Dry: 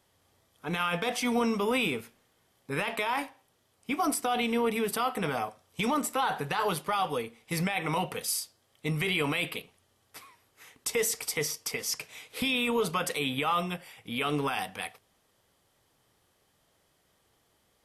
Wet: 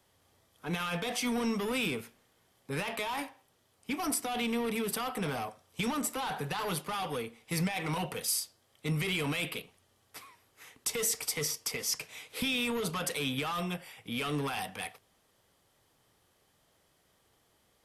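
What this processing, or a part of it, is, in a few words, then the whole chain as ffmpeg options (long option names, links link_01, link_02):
one-band saturation: -filter_complex "[0:a]acrossover=split=220|3400[link_01][link_02][link_03];[link_02]asoftclip=type=tanh:threshold=-32.5dB[link_04];[link_01][link_04][link_03]amix=inputs=3:normalize=0"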